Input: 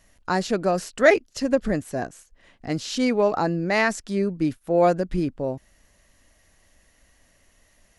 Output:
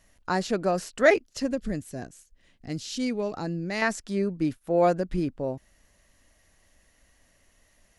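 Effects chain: 1.51–3.82 s: peaking EQ 940 Hz -10.5 dB 2.5 oct; trim -3 dB

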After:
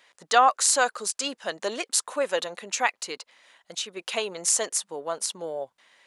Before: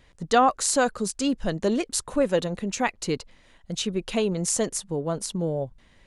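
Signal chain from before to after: high-pass 750 Hz 12 dB/octave; 3.01–3.97 s: compression 1.5:1, threshold -40 dBFS, peak gain reduction 5.5 dB; trim +3.5 dB

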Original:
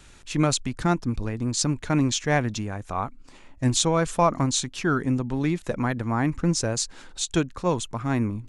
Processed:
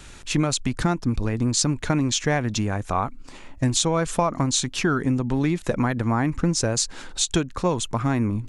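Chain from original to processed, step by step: compression, threshold -25 dBFS, peak gain reduction 10.5 dB; trim +7 dB

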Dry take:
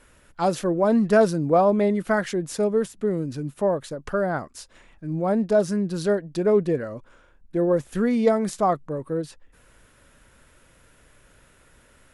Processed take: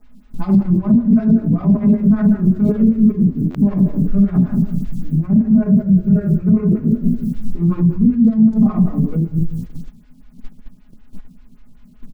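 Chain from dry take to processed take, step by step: local Wiener filter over 41 samples; 5.12–7.56 s: steep low-pass 2.7 kHz 72 dB/octave; resonant low shelf 340 Hz +13.5 dB, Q 3; simulated room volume 240 m³, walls mixed, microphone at 2 m; bit crusher 8-bit; peak limiter -10.5 dBFS, peak gain reduction 25.5 dB; comb 4.8 ms, depth 94%; frequency-shifting echo 119 ms, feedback 47%, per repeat -52 Hz, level -15.5 dB; gate -20 dBFS, range -13 dB; buffer glitch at 3.50 s, samples 512, times 3; lamp-driven phase shifter 5.2 Hz

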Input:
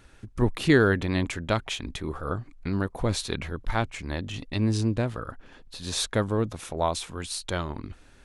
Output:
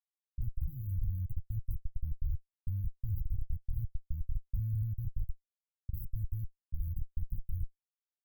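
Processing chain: Schmitt trigger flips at -26 dBFS; level-controlled noise filter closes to 420 Hz, open at -28.5 dBFS; inverse Chebyshev band-stop 590–5000 Hz, stop band 80 dB

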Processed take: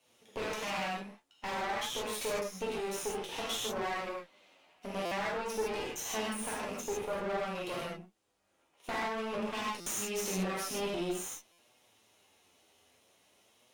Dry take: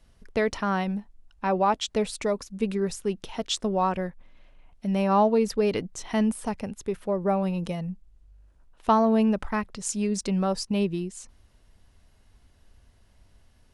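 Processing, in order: comb filter that takes the minimum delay 0.32 ms; high-pass 440 Hz 12 dB/octave; compression 6:1, threshold -35 dBFS, peak gain reduction 15 dB; gated-style reverb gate 180 ms flat, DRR -6.5 dB; valve stage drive 32 dB, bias 0.75; flange 0.51 Hz, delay 7.8 ms, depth 4.7 ms, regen +46%; buffer glitch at 5.05/9.80/11.52 s, samples 256, times 10; trim +6 dB

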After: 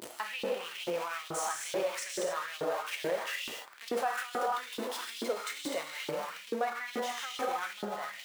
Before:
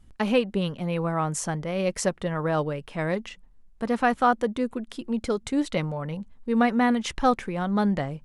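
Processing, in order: jump at every zero crossing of -25 dBFS; gated-style reverb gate 310 ms flat, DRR -1 dB; peak limiter -17.5 dBFS, peak gain reduction 12.5 dB; LFO high-pass saw up 2.3 Hz 330–3700 Hz; trim -8.5 dB

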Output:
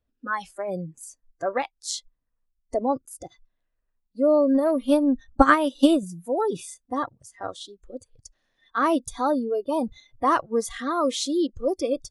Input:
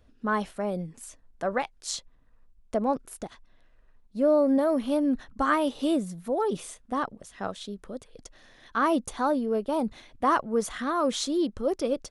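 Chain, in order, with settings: spectral noise reduction 21 dB; 4.54–6.03 s: transient shaper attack +12 dB, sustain -4 dB; trim +2.5 dB

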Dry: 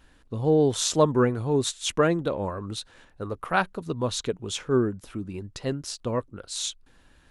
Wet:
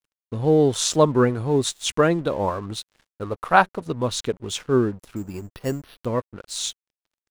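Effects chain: 2.34–3.88 s: dynamic bell 830 Hz, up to +7 dB, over -36 dBFS, Q 0.91; crossover distortion -48 dBFS; 5.16–6.06 s: careless resampling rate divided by 6×, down filtered, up hold; trim +3.5 dB

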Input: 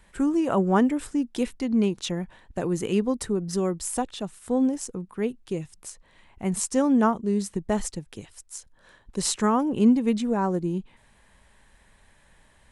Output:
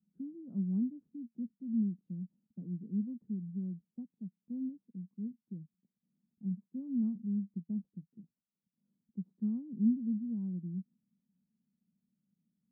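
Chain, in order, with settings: Butterworth band-pass 200 Hz, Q 2.7; trim -8 dB

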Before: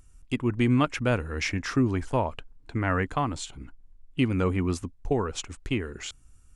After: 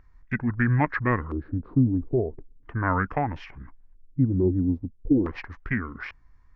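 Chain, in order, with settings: LFO low-pass square 0.38 Hz 450–2300 Hz; formant shift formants -5 st

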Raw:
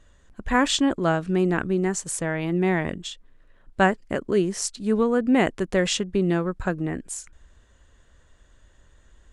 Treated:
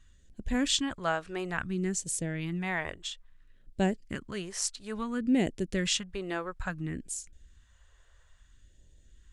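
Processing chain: phase shifter stages 2, 0.59 Hz, lowest notch 200–1200 Hz; trim -4 dB

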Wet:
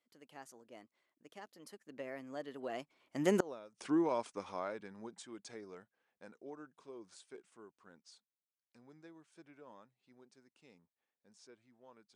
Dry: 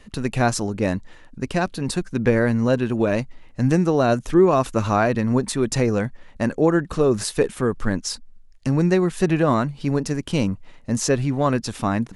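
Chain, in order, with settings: Doppler pass-by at 3.49 s, 42 m/s, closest 2.1 m; high-pass 330 Hz 12 dB/octave; inverted gate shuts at -22 dBFS, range -30 dB; trim +5.5 dB

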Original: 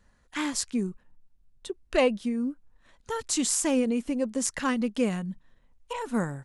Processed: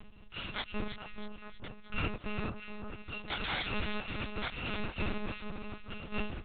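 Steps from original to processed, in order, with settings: bit-reversed sample order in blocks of 128 samples; 0.67–2.36 s: low-pass 2.7 kHz 6 dB/octave; upward compressor, threshold -37 dBFS; two-band feedback delay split 1.5 kHz, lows 435 ms, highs 318 ms, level -6.5 dB; monotone LPC vocoder at 8 kHz 210 Hz

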